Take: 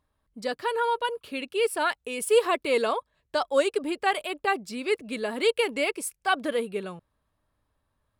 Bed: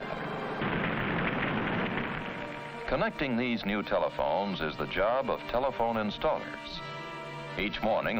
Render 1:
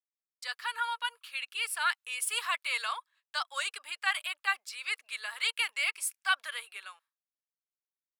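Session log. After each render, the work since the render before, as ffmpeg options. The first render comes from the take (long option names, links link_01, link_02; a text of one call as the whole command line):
ffmpeg -i in.wav -af "highpass=frequency=1200:width=0.5412,highpass=frequency=1200:width=1.3066,agate=range=-33dB:threshold=-60dB:ratio=3:detection=peak" out.wav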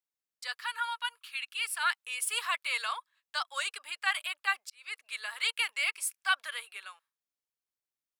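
ffmpeg -i in.wav -filter_complex "[0:a]asettb=1/sr,asplit=3[link_01][link_02][link_03];[link_01]atrim=end=0.604[link_04];[link_02]atrim=start=0.6:end=1.83,asetpts=PTS-STARTPTS,afade=type=in:duration=0.004:curve=qsin,afade=type=out:start_time=1.226:duration=0.004:curve=qsin,equalizer=frequency=510:width=1.8:gain=-11[link_05];[link_03]atrim=start=1.826[link_06];[link_04][link_05]acrossfade=duration=0.004:curve1=hsin:curve2=qsin[link_07];[link_07][link_06]acrossfade=duration=0.004:curve1=qsin:curve2=hsin,asplit=2[link_08][link_09];[link_08]atrim=end=4.7,asetpts=PTS-STARTPTS,afade=type=out:start_time=4.696:duration=0.004:curve=hsin[link_10];[link_09]atrim=start=4.7,asetpts=PTS-STARTPTS,afade=type=in:duration=0.45[link_11];[link_10][link_11]concat=n=2:v=0:a=1" out.wav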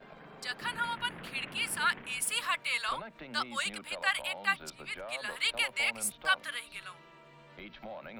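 ffmpeg -i in.wav -i bed.wav -filter_complex "[1:a]volume=-16dB[link_01];[0:a][link_01]amix=inputs=2:normalize=0" out.wav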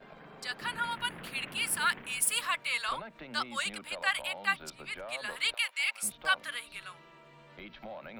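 ffmpeg -i in.wav -filter_complex "[0:a]asettb=1/sr,asplit=3[link_01][link_02][link_03];[link_01]atrim=end=0.914[link_04];[link_02]atrim=start=0.91:end=2.41,asetpts=PTS-STARTPTS,afade=type=in:duration=0.004:curve=qsin,afade=type=out:start_time=1.496:duration=0.004:curve=qsin,highshelf=frequency=9300:gain=9[link_05];[link_03]atrim=start=2.406[link_06];[link_04][link_05]acrossfade=duration=0.004:curve1=hsin:curve2=qsin[link_07];[link_07][link_06]acrossfade=duration=0.004:curve1=qsin:curve2=hsin,asettb=1/sr,asplit=3[link_08][link_09][link_10];[link_08]atrim=end=5.544[link_11];[link_09]atrim=start=5.54:end=6.03,asetpts=PTS-STARTPTS,afade=type=in:duration=0.004:curve=qsin,afade=type=out:start_time=0.486:duration=0.004:curve=qsin,highpass=1400[link_12];[link_10]atrim=start=6.026[link_13];[link_11][link_12]acrossfade=duration=0.004:curve1=hsin:curve2=qsin[link_14];[link_14][link_13]acrossfade=duration=0.004:curve1=qsin:curve2=hsin" out.wav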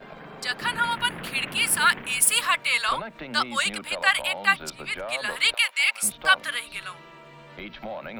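ffmpeg -i in.wav -af "volume=9dB" out.wav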